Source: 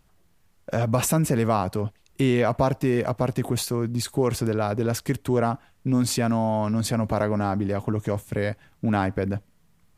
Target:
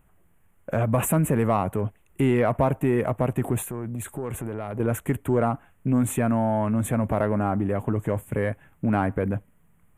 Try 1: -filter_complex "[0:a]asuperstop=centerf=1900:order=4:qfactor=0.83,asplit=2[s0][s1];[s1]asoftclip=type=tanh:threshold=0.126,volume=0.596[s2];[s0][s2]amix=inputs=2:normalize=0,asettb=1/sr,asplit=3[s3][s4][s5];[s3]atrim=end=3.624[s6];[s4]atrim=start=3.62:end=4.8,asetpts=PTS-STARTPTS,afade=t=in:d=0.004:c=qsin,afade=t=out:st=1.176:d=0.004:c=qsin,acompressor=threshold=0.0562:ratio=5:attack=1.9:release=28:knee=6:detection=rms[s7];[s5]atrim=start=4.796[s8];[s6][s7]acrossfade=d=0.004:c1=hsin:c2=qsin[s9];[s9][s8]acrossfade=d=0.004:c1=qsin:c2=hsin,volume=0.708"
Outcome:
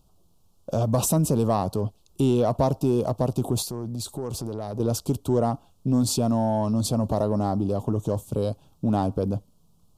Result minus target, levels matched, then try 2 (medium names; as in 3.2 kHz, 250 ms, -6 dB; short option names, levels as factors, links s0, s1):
2 kHz band -14.0 dB
-filter_complex "[0:a]asuperstop=centerf=4800:order=4:qfactor=0.83,asplit=2[s0][s1];[s1]asoftclip=type=tanh:threshold=0.126,volume=0.596[s2];[s0][s2]amix=inputs=2:normalize=0,asettb=1/sr,asplit=3[s3][s4][s5];[s3]atrim=end=3.624[s6];[s4]atrim=start=3.62:end=4.8,asetpts=PTS-STARTPTS,afade=t=in:d=0.004:c=qsin,afade=t=out:st=1.176:d=0.004:c=qsin,acompressor=threshold=0.0562:ratio=5:attack=1.9:release=28:knee=6:detection=rms[s7];[s5]atrim=start=4.796[s8];[s6][s7]acrossfade=d=0.004:c1=hsin:c2=qsin[s9];[s9][s8]acrossfade=d=0.004:c1=qsin:c2=hsin,volume=0.708"